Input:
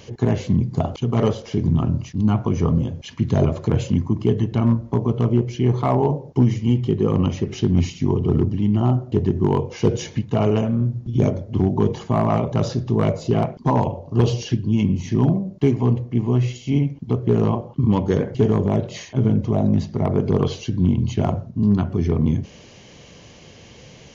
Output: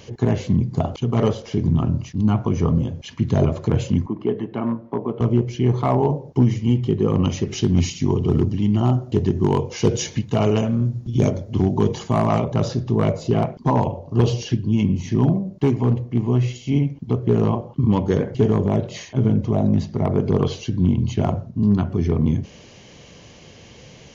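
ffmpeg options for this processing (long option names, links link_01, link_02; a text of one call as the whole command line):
ffmpeg -i in.wav -filter_complex "[0:a]asettb=1/sr,asplit=3[link_01][link_02][link_03];[link_01]atrim=end=4.064[link_04];[link_02]atrim=start=4.06:end=5.21,asetpts=PTS-STARTPTS,afade=type=in:duration=0.004:curve=qsin,afade=type=out:start_time=1.146:duration=0.004:curve=qsin,highpass=260,lowpass=2300[link_05];[link_03]atrim=start=5.206[link_06];[link_04][link_05]acrossfade=duration=0.004:curve1=hsin:curve2=qsin[link_07];[link_07][link_06]acrossfade=duration=0.004:curve1=qsin:curve2=hsin,asettb=1/sr,asplit=3[link_08][link_09][link_10];[link_08]atrim=end=7.244[link_11];[link_09]atrim=start=7.24:end=12.44,asetpts=PTS-STARTPTS,afade=type=in:duration=0.004:curve=qsin,afade=type=out:start_time=5.196:duration=0.004:curve=qsin,highshelf=frequency=3700:gain=10[link_12];[link_10]atrim=start=12.436[link_13];[link_11][link_12]acrossfade=duration=0.004:curve1=hsin:curve2=qsin[link_14];[link_14][link_13]acrossfade=duration=0.004:curve1=qsin:curve2=hsin,asettb=1/sr,asplit=3[link_15][link_16][link_17];[link_15]atrim=end=15.514[link_18];[link_16]atrim=start=15.51:end=16.18,asetpts=PTS-STARTPTS,afade=type=in:duration=0.004:curve=qsin,afade=type=out:start_time=0.666:duration=0.004:curve=qsin,volume=11dB,asoftclip=hard,volume=-11dB[link_19];[link_17]atrim=start=16.176[link_20];[link_18][link_19]acrossfade=duration=0.004:curve1=hsin:curve2=qsin[link_21];[link_21][link_20]acrossfade=duration=0.004:curve1=qsin:curve2=hsin" out.wav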